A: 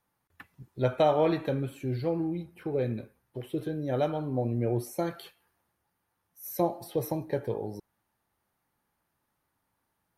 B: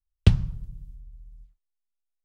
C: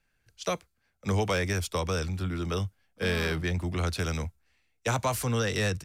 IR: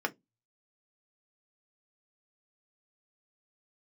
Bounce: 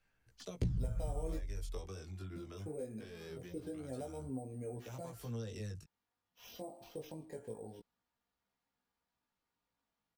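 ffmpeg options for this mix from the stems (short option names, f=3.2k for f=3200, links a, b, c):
-filter_complex "[0:a]aecho=1:1:4.2:0.38,alimiter=limit=-22.5dB:level=0:latency=1:release=218,acrusher=samples=5:mix=1:aa=0.000001,volume=-8dB,asplit=3[a][b][c];[a]atrim=end=1.39,asetpts=PTS-STARTPTS,afade=t=out:st=1.386:d=0.004:c=hsin[d];[b]atrim=start=1.39:end=2.36,asetpts=PTS-STARTPTS,volume=0[e];[c]atrim=start=2.36,asetpts=PTS-STARTPTS,afade=t=in:d=0.004:c=hsin[f];[d][e][f]concat=n=3:v=0:a=1,asplit=2[g][h];[1:a]asoftclip=type=tanh:threshold=-18dB,adelay=350,volume=2.5dB[i];[2:a]acompressor=threshold=-35dB:ratio=6,volume=-5.5dB[j];[h]apad=whole_len=262038[k];[j][k]sidechaincompress=threshold=-46dB:ratio=8:attack=45:release=460[l];[i][l]amix=inputs=2:normalize=0,aphaser=in_gain=1:out_gain=1:delay=3:decay=0.41:speed=0.2:type=sinusoidal,alimiter=limit=-20.5dB:level=0:latency=1:release=483,volume=0dB[m];[g][m]amix=inputs=2:normalize=0,flanger=delay=15:depth=5.7:speed=0.23,acrossover=split=730|4500[n][o][p];[n]acompressor=threshold=-30dB:ratio=4[q];[o]acompressor=threshold=-60dB:ratio=4[r];[p]acompressor=threshold=-54dB:ratio=4[s];[q][r][s]amix=inputs=3:normalize=0"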